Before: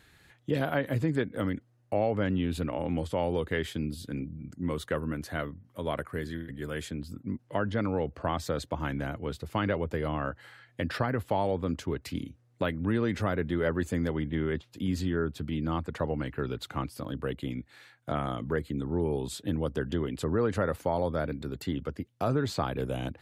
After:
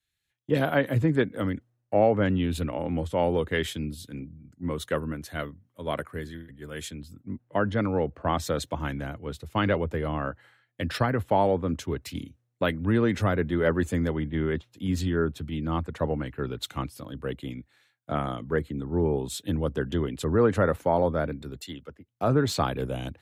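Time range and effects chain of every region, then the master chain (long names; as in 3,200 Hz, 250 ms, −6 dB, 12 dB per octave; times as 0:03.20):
0:21.61–0:22.08: low-shelf EQ 380 Hz −7 dB + multiband upward and downward expander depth 100%
whole clip: de-essing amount 85%; notch filter 4,700 Hz, Q 11; multiband upward and downward expander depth 100%; level +3.5 dB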